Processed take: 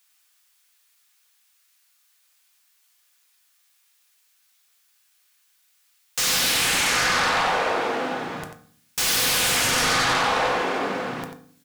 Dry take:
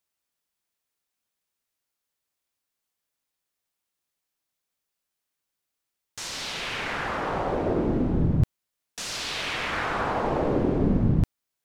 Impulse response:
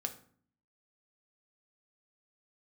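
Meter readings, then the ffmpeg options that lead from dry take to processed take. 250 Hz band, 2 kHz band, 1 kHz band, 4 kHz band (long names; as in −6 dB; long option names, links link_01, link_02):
−6.5 dB, +9.5 dB, +7.0 dB, +11.5 dB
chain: -filter_complex "[0:a]highpass=1400,aeval=exprs='0.119*sin(PI/2*6.31*val(0)/0.119)':channel_layout=same,aecho=1:1:91:0.335[link_01];[1:a]atrim=start_sample=2205[link_02];[link_01][link_02]afir=irnorm=-1:irlink=0"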